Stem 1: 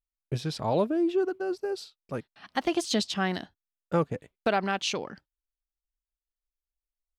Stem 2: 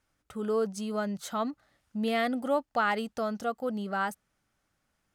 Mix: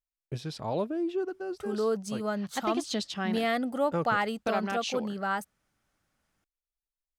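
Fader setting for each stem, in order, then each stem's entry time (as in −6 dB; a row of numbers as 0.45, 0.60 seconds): −5.0, 0.0 decibels; 0.00, 1.30 seconds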